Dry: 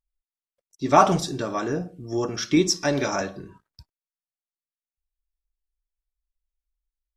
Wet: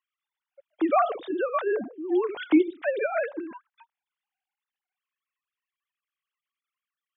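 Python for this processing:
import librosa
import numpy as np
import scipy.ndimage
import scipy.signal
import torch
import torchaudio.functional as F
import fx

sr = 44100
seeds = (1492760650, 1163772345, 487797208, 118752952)

y = fx.sine_speech(x, sr)
y = fx.band_squash(y, sr, depth_pct=70)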